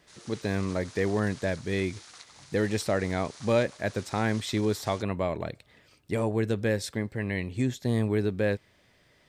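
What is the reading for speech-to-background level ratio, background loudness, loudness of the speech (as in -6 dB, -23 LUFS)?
18.5 dB, -48.0 LUFS, -29.5 LUFS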